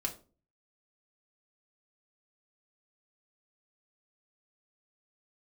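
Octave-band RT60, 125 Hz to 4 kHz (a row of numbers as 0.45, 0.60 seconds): 0.60, 0.50, 0.40, 0.30, 0.25, 0.25 seconds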